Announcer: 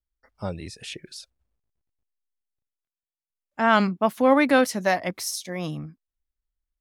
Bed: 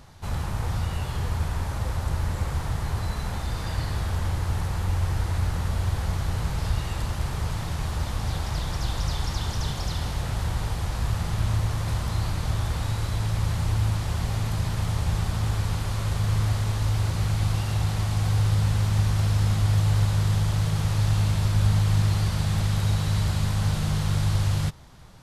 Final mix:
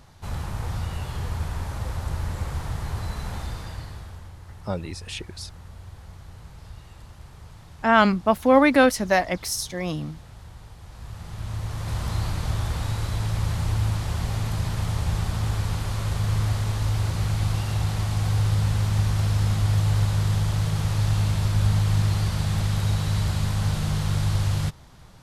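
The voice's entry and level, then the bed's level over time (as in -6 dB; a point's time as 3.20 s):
4.25 s, +2.0 dB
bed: 3.43 s -2 dB
4.33 s -16.5 dB
10.78 s -16.5 dB
12.06 s 0 dB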